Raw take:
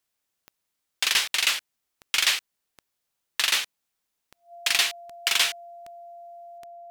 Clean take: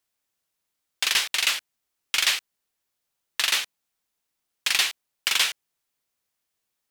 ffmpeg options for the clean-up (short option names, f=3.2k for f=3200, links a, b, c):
-af "adeclick=t=4,bandreject=f=690:w=30,asetnsamples=n=441:p=0,asendcmd='6.58 volume volume 6.5dB',volume=0dB"